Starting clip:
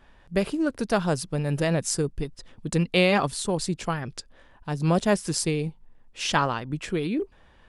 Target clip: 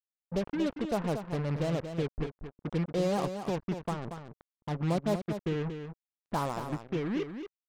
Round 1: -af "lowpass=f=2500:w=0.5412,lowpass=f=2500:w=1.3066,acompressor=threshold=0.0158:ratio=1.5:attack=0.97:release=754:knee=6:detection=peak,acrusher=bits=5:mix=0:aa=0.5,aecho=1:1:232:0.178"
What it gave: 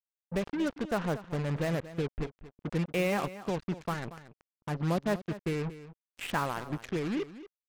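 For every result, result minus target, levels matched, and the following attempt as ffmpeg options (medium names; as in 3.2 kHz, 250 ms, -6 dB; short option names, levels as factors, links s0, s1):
2 kHz band +6.0 dB; echo-to-direct -6.5 dB
-af "lowpass=f=1100:w=0.5412,lowpass=f=1100:w=1.3066,acompressor=threshold=0.0158:ratio=1.5:attack=0.97:release=754:knee=6:detection=peak,acrusher=bits=5:mix=0:aa=0.5,aecho=1:1:232:0.178"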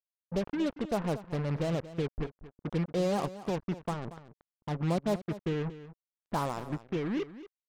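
echo-to-direct -6.5 dB
-af "lowpass=f=1100:w=0.5412,lowpass=f=1100:w=1.3066,acompressor=threshold=0.0158:ratio=1.5:attack=0.97:release=754:knee=6:detection=peak,acrusher=bits=5:mix=0:aa=0.5,aecho=1:1:232:0.376"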